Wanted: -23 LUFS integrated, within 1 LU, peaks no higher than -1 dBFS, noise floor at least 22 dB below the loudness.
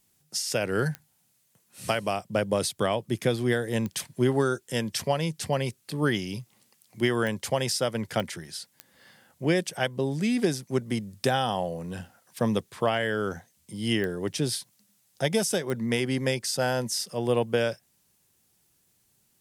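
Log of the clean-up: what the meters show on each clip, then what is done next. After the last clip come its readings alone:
clicks 7; loudness -28.0 LUFS; peak -11.0 dBFS; loudness target -23.0 LUFS
-> de-click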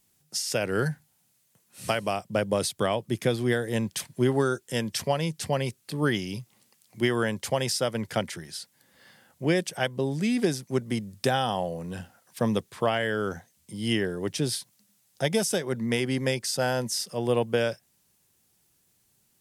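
clicks 0; loudness -28.0 LUFS; peak -11.0 dBFS; loudness target -23.0 LUFS
-> gain +5 dB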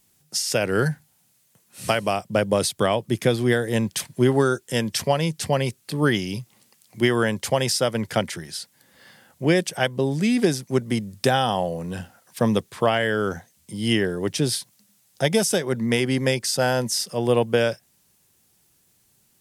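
loudness -23.0 LUFS; peak -6.0 dBFS; noise floor -63 dBFS

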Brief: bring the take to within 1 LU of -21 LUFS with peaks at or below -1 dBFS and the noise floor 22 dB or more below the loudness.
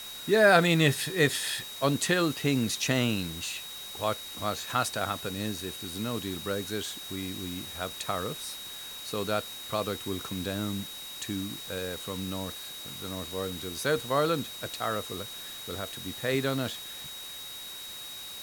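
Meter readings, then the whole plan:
steady tone 3800 Hz; tone level -41 dBFS; noise floor -42 dBFS; noise floor target -53 dBFS; loudness -30.5 LUFS; peak -7.5 dBFS; loudness target -21.0 LUFS
-> notch 3800 Hz, Q 30; noise print and reduce 11 dB; gain +9.5 dB; limiter -1 dBFS

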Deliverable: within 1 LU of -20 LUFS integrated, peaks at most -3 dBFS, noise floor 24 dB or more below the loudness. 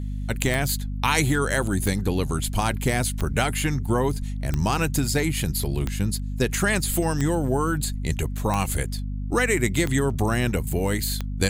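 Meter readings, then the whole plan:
clicks 9; hum 50 Hz; harmonics up to 250 Hz; hum level -27 dBFS; loudness -24.5 LUFS; peak -4.5 dBFS; loudness target -20.0 LUFS
-> de-click; de-hum 50 Hz, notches 5; gain +4.5 dB; limiter -3 dBFS

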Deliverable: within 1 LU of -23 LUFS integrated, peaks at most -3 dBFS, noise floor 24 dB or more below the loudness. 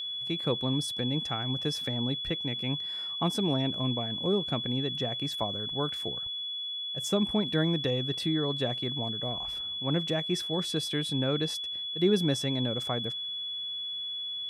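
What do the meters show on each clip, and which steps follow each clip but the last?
steady tone 3400 Hz; tone level -33 dBFS; loudness -30.0 LUFS; peak -14.0 dBFS; loudness target -23.0 LUFS
-> notch 3400 Hz, Q 30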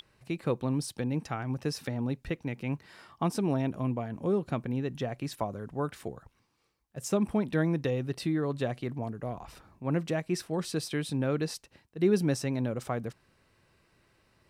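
steady tone none; loudness -32.0 LUFS; peak -14.0 dBFS; loudness target -23.0 LUFS
-> gain +9 dB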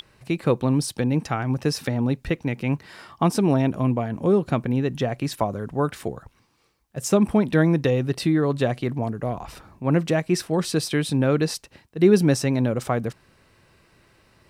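loudness -23.0 LUFS; peak -5.0 dBFS; noise floor -61 dBFS

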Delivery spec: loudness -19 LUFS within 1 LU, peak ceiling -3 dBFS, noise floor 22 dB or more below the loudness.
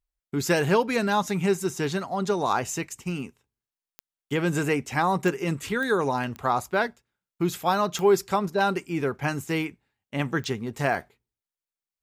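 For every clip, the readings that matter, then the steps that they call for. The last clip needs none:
clicks 6; loudness -26.0 LUFS; peak -10.5 dBFS; loudness target -19.0 LUFS
-> de-click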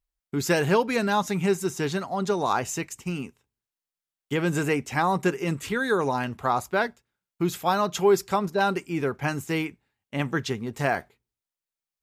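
clicks 0; loudness -26.0 LUFS; peak -10.5 dBFS; loudness target -19.0 LUFS
-> gain +7 dB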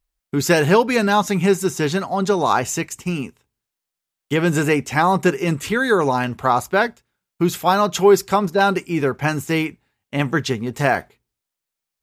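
loudness -19.0 LUFS; peak -3.5 dBFS; noise floor -84 dBFS

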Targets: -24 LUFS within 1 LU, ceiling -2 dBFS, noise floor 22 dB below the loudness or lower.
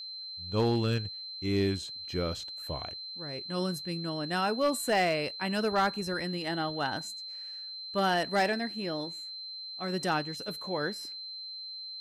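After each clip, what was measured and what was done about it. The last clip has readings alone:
clipped 0.4%; flat tops at -20.0 dBFS; steady tone 4100 Hz; tone level -39 dBFS; loudness -32.0 LUFS; peak -20.0 dBFS; loudness target -24.0 LUFS
-> clip repair -20 dBFS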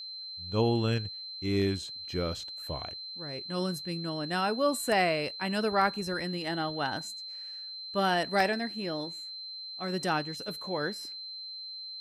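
clipped 0.0%; steady tone 4100 Hz; tone level -39 dBFS
-> notch 4100 Hz, Q 30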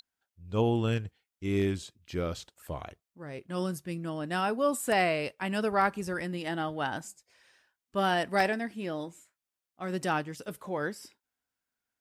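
steady tone none; loudness -31.5 LUFS; peak -11.0 dBFS; loudness target -24.0 LUFS
-> gain +7.5 dB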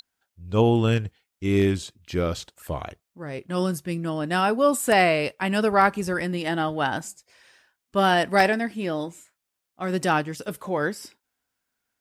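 loudness -24.0 LUFS; peak -3.5 dBFS; noise floor -82 dBFS

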